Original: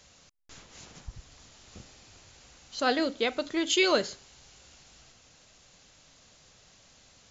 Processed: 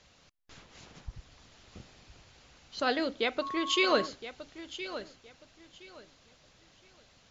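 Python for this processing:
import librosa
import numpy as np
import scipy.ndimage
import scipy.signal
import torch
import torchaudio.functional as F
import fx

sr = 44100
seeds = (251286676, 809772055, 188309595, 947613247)

y = scipy.signal.sosfilt(scipy.signal.butter(2, 4600.0, 'lowpass', fs=sr, output='sos'), x)
y = fx.echo_feedback(y, sr, ms=1017, feedback_pct=24, wet_db=-13)
y = fx.dmg_tone(y, sr, hz=1100.0, level_db=-31.0, at=(3.41, 4.05), fade=0.02)
y = fx.hpss(y, sr, part='harmonic', gain_db=-4)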